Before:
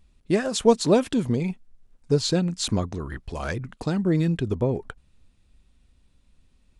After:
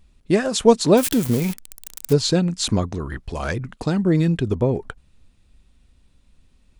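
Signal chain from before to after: 0.97–2.13 s: zero-crossing glitches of -20.5 dBFS; trim +4 dB

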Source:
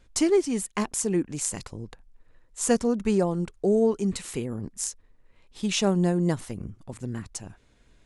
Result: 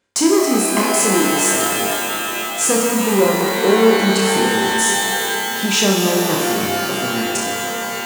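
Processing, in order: waveshaping leveller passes 3; in parallel at -2 dB: compression, threshold -23 dBFS, peak gain reduction 10.5 dB; on the sum: high-pass 230 Hz 12 dB/octave; on a send: flutter echo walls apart 5.3 m, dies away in 0.54 s; on the sum: pitch-shifted reverb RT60 4 s, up +12 st, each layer -2 dB, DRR 2 dB; trim -4 dB

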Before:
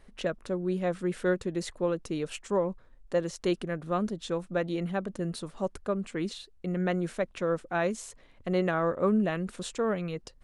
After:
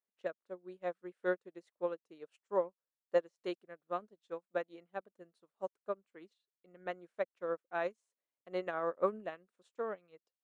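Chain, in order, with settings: high-pass 510 Hz 12 dB/octave; tilt EQ -2 dB/octave; upward expansion 2.5:1, over -47 dBFS

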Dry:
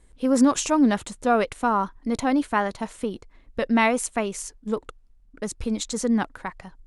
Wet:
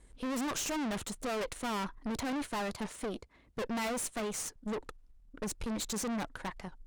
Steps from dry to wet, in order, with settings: 2.11–4.56 s: high-pass 52 Hz 24 dB/octave; valve stage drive 35 dB, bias 0.75; warped record 78 rpm, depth 100 cents; trim +2 dB

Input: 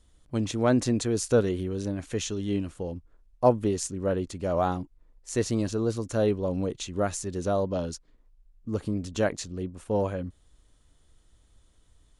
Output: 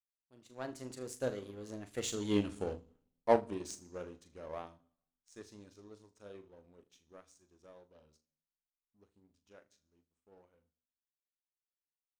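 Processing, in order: Doppler pass-by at 2.49 s, 28 m/s, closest 10 m; bass shelf 240 Hz -9.5 dB; flutter echo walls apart 6.7 m, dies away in 0.26 s; on a send at -16 dB: reverberation RT60 1.0 s, pre-delay 3 ms; on the sum: level rider gain up to 8.5 dB; power-law waveshaper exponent 1.4; trim -3.5 dB

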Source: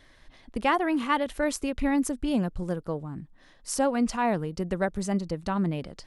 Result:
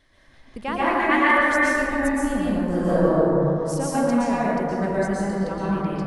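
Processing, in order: 0.87–1.54 s: peaking EQ 1.9 kHz +14 dB 1 oct; 2.65–3.09 s: reverb throw, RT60 0.95 s, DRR -11 dB; plate-style reverb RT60 3 s, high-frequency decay 0.3×, pre-delay 105 ms, DRR -9 dB; trim -5.5 dB

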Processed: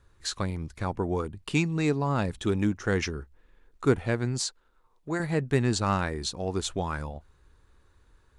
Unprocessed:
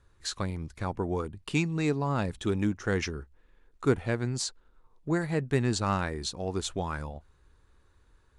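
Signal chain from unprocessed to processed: 4.41–5.20 s: bass shelf 360 Hz -9 dB; trim +2 dB

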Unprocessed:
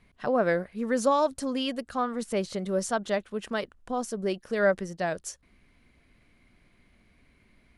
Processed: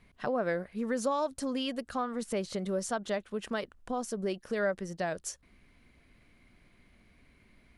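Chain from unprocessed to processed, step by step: compression 2:1, threshold -32 dBFS, peak gain reduction 8 dB

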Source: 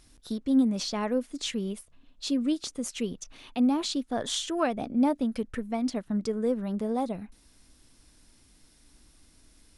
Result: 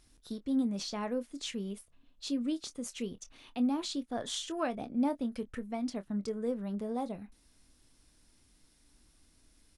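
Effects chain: doubling 25 ms -13 dB; trim -6.5 dB

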